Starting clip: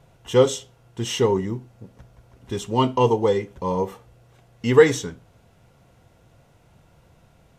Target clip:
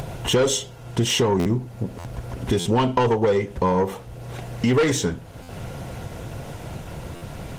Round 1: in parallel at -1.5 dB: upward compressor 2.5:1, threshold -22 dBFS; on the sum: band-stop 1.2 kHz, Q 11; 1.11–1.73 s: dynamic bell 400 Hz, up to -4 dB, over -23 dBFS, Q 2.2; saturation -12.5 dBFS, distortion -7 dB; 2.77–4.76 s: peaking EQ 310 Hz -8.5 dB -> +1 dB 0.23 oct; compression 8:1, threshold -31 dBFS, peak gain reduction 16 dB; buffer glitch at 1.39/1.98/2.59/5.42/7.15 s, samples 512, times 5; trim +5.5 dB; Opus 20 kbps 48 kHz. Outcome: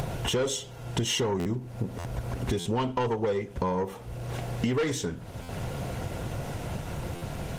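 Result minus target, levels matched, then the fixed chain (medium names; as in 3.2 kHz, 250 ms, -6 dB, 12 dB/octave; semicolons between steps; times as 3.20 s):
compression: peak gain reduction +8.5 dB
in parallel at -1.5 dB: upward compressor 2.5:1, threshold -22 dBFS; on the sum: band-stop 1.2 kHz, Q 11; 1.11–1.73 s: dynamic bell 400 Hz, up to -4 dB, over -23 dBFS, Q 2.2; saturation -12.5 dBFS, distortion -7 dB; 2.77–4.76 s: peaking EQ 310 Hz -8.5 dB -> +1 dB 0.23 oct; compression 8:1, threshold -21.5 dBFS, peak gain reduction 8 dB; buffer glitch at 1.39/1.98/2.59/5.42/7.15 s, samples 512, times 5; trim +5.5 dB; Opus 20 kbps 48 kHz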